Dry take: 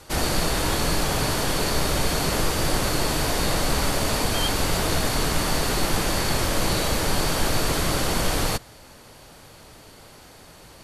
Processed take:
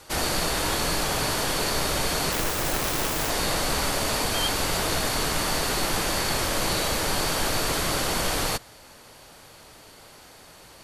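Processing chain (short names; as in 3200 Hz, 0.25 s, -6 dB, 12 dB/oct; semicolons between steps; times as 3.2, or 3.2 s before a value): 2.32–3.3 self-modulated delay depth 0.65 ms; low shelf 350 Hz -6.5 dB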